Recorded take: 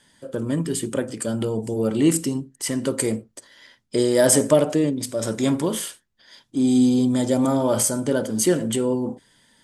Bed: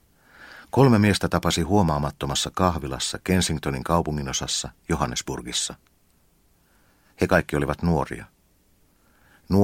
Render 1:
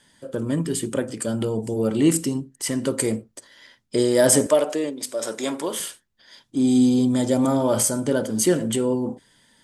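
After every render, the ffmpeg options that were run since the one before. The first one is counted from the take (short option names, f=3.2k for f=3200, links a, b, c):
-filter_complex "[0:a]asettb=1/sr,asplit=3[a][b][c];[a]atrim=end=4.464[d];[b]atrim=start=4.46:end=5.8,asetpts=PTS-STARTPTS,afade=t=in:d=0.004:c=qsin,afade=t=out:st=1.336:d=0.004:c=qsin,highpass=410[e];[c]atrim=start=5.796[f];[d][e]acrossfade=d=0.004:c1=hsin:c2=qsin[g];[g][f]acrossfade=d=0.004:c1=qsin:c2=hsin"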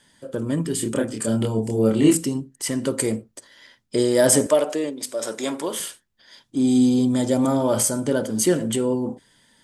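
-filter_complex "[0:a]asettb=1/sr,asplit=3[a][b][c];[a]atrim=end=0.764[d];[b]atrim=start=0.76:end=2.15,asetpts=PTS-STARTPTS,afade=t=in:d=0.004:c=qsin,afade=t=out:st=1.386:d=0.004:c=qsin,asplit=2[e][f];[f]adelay=27,volume=-2.5dB[g];[e][g]amix=inputs=2:normalize=0,atrim=end_sample=61299[h];[c]atrim=start=2.146[i];[d][h]acrossfade=d=0.004:c1=hsin:c2=qsin[j];[j][i]acrossfade=d=0.004:c1=qsin:c2=hsin"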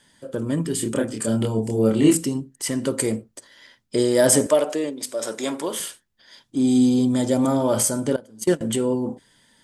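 -filter_complex "[0:a]asettb=1/sr,asplit=3[a][b][c];[a]atrim=end=8.164[d];[b]atrim=start=8.16:end=8.61,asetpts=PTS-STARTPTS,afade=t=in:d=0.004:c=qsin,afade=t=out:st=0.446:d=0.004:c=qsin,agate=range=-21dB:threshold=-20dB:ratio=16:release=100:detection=peak[e];[c]atrim=start=8.606[f];[d][e]acrossfade=d=0.004:c1=hsin:c2=qsin[g];[g][f]acrossfade=d=0.004:c1=qsin:c2=hsin"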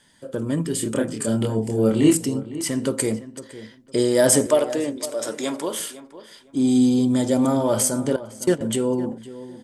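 -filter_complex "[0:a]asplit=2[a][b];[b]adelay=508,lowpass=f=2.5k:p=1,volume=-15dB,asplit=2[c][d];[d]adelay=508,lowpass=f=2.5k:p=1,volume=0.23[e];[a][c][e]amix=inputs=3:normalize=0"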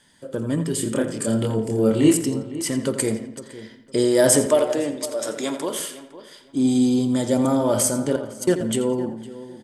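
-filter_complex "[0:a]asplit=2[a][b];[b]adelay=85,lowpass=f=4.5k:p=1,volume=-10dB,asplit=2[c][d];[d]adelay=85,lowpass=f=4.5k:p=1,volume=0.43,asplit=2[e][f];[f]adelay=85,lowpass=f=4.5k:p=1,volume=0.43,asplit=2[g][h];[h]adelay=85,lowpass=f=4.5k:p=1,volume=0.43,asplit=2[i][j];[j]adelay=85,lowpass=f=4.5k:p=1,volume=0.43[k];[a][c][e][g][i][k]amix=inputs=6:normalize=0"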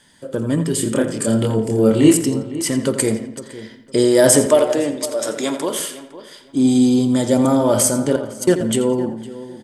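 -af "volume=4.5dB,alimiter=limit=-1dB:level=0:latency=1"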